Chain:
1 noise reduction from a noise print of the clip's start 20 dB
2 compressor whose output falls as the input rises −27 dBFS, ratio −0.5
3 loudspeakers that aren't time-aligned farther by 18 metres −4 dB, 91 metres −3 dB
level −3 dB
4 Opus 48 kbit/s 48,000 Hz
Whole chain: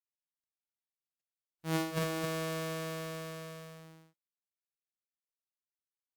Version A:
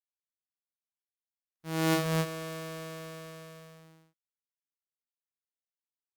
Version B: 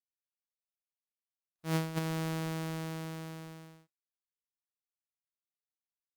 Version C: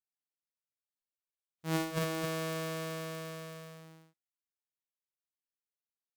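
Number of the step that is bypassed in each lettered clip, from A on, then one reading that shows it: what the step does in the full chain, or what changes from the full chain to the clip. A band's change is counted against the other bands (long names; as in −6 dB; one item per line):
2, change in crest factor +2.5 dB
3, 125 Hz band +6.0 dB
4, change in crest factor −4.0 dB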